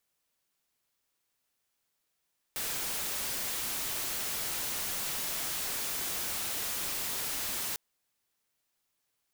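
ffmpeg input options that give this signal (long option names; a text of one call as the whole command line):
ffmpeg -f lavfi -i "anoisesrc=color=white:amplitude=0.0326:duration=5.2:sample_rate=44100:seed=1" out.wav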